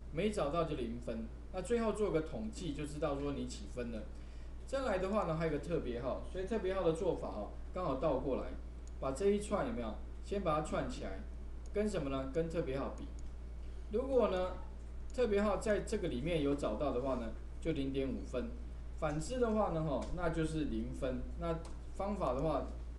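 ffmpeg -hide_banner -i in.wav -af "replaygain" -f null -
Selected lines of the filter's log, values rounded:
track_gain = +18.0 dB
track_peak = 0.070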